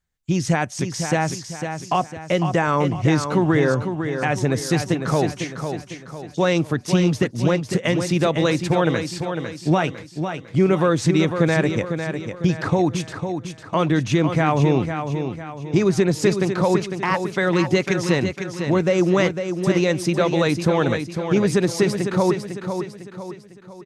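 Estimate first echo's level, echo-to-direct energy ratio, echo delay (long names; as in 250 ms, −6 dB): −7.5 dB, −6.5 dB, 502 ms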